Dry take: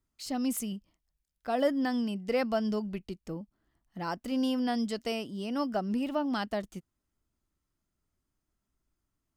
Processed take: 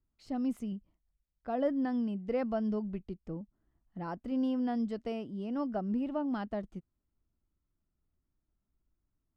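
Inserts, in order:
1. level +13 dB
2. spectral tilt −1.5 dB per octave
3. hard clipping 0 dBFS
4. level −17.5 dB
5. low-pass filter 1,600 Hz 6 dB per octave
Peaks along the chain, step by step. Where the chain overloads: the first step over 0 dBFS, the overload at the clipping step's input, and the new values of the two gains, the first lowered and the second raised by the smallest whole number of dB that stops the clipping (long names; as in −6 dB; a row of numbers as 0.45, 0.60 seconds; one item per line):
−3.0, −2.0, −2.0, −19.5, −20.5 dBFS
no step passes full scale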